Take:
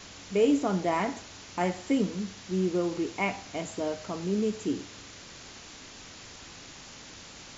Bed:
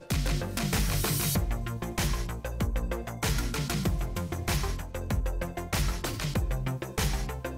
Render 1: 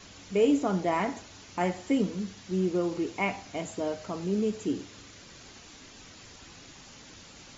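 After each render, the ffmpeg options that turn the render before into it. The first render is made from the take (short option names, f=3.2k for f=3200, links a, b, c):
-af "afftdn=nr=6:nf=-48"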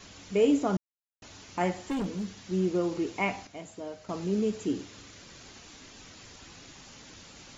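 -filter_complex "[0:a]asettb=1/sr,asplit=3[a][b][c];[a]atrim=end=1.754[d];[b]atrim=start=1.75:end=2.34,asetpts=PTS-STARTPTS,afade=t=in:d=0.004:c=qsin,afade=t=out:st=0.586:d=0.004:c=qsin,asoftclip=type=hard:threshold=-28dB[e];[c]atrim=start=2.336[f];[d][e]acrossfade=d=0.004:c1=hsin:c2=qsin[g];[g][f]acrossfade=d=0.004:c1=qsin:c2=hsin,asplit=5[h][i][j][k][l];[h]atrim=end=0.77,asetpts=PTS-STARTPTS,afade=t=out:st=0.766:d=0.004:c=hsin[m];[i]atrim=start=0.77:end=1.22,asetpts=PTS-STARTPTS,volume=0[n];[j]atrim=start=1.22:end=3.472,asetpts=PTS-STARTPTS,afade=t=in:d=0.004:c=hsin[o];[k]atrim=start=3.468:end=4.092,asetpts=PTS-STARTPTS,volume=-8dB[p];[l]atrim=start=4.088[q];[m][n][o]concat=n=3:v=0:a=1[r];[r][p]acrossfade=d=0.004:c1=hsin:c2=hsin[s];[s][q]acrossfade=d=0.004:c1=hsin:c2=hsin"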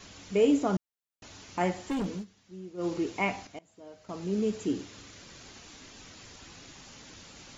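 -filter_complex "[0:a]asplit=4[a][b][c][d];[a]atrim=end=2.25,asetpts=PTS-STARTPTS,afade=t=out:st=2.12:d=0.13:c=qsin:silence=0.158489[e];[b]atrim=start=2.25:end=2.77,asetpts=PTS-STARTPTS,volume=-16dB[f];[c]atrim=start=2.77:end=3.59,asetpts=PTS-STARTPTS,afade=t=in:d=0.13:c=qsin:silence=0.158489,afade=t=out:st=0.816:d=0.004:c=hsin:silence=0.0707946[g];[d]atrim=start=3.59,asetpts=PTS-STARTPTS,afade=t=in:d=0.92:silence=0.0707946[h];[e][f][g][h]concat=n=4:v=0:a=1"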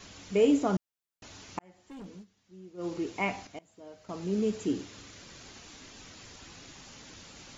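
-filter_complex "[0:a]asplit=2[a][b];[a]atrim=end=1.59,asetpts=PTS-STARTPTS,afade=t=out:st=1.586:d=0.004:c=hsin[c];[b]atrim=start=1.59,asetpts=PTS-STARTPTS,afade=t=in:d=1.98[d];[c][d]concat=n=2:v=0:a=1"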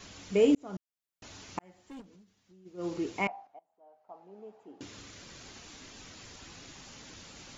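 -filter_complex "[0:a]asplit=3[a][b][c];[a]afade=t=out:st=2:d=0.02[d];[b]acompressor=threshold=-55dB:ratio=6:attack=3.2:release=140:knee=1:detection=peak,afade=t=in:st=2:d=0.02,afade=t=out:st=2.65:d=0.02[e];[c]afade=t=in:st=2.65:d=0.02[f];[d][e][f]amix=inputs=3:normalize=0,asettb=1/sr,asplit=3[g][h][i];[g]atrim=end=3.274[j];[h]atrim=start=3.27:end=4.81,asetpts=PTS-STARTPTS,afade=t=in:d=0.004:c=qsin,afade=t=out:st=1.536:d=0.004:c=qsin,bandpass=f=780:t=q:w=5.9[k];[i]atrim=start=4.806[l];[j][k]acrossfade=d=0.004:c1=hsin:c2=qsin[m];[m][l]acrossfade=d=0.004:c1=qsin:c2=hsin,asplit=2[n][o];[n]atrim=end=0.55,asetpts=PTS-STARTPTS,afade=t=out:st=0.546:d=0.004:c=hsin[p];[o]atrim=start=0.55,asetpts=PTS-STARTPTS,afade=t=in:d=0.72[q];[p][q]concat=n=2:v=0:a=1"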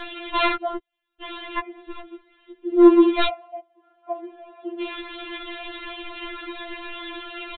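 -af "aresample=8000,aeval=exprs='0.211*sin(PI/2*6.31*val(0)/0.211)':c=same,aresample=44100,afftfilt=real='re*4*eq(mod(b,16),0)':imag='im*4*eq(mod(b,16),0)':win_size=2048:overlap=0.75"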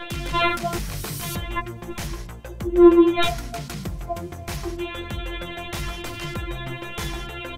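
-filter_complex "[1:a]volume=-2.5dB[a];[0:a][a]amix=inputs=2:normalize=0"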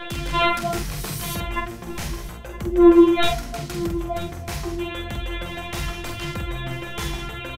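-filter_complex "[0:a]asplit=2[a][b];[b]adelay=47,volume=-5.5dB[c];[a][c]amix=inputs=2:normalize=0,aecho=1:1:967|1934:0.158|0.0285"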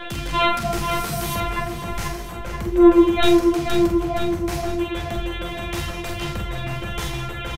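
-filter_complex "[0:a]asplit=2[a][b];[b]adelay=37,volume=-10.5dB[c];[a][c]amix=inputs=2:normalize=0,asplit=2[d][e];[e]adelay=482,lowpass=f=2.9k:p=1,volume=-4.5dB,asplit=2[f][g];[g]adelay=482,lowpass=f=2.9k:p=1,volume=0.48,asplit=2[h][i];[i]adelay=482,lowpass=f=2.9k:p=1,volume=0.48,asplit=2[j][k];[k]adelay=482,lowpass=f=2.9k:p=1,volume=0.48,asplit=2[l][m];[m]adelay=482,lowpass=f=2.9k:p=1,volume=0.48,asplit=2[n][o];[o]adelay=482,lowpass=f=2.9k:p=1,volume=0.48[p];[d][f][h][j][l][n][p]amix=inputs=7:normalize=0"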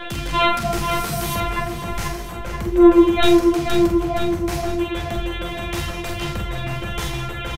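-af "volume=1.5dB,alimiter=limit=-3dB:level=0:latency=1"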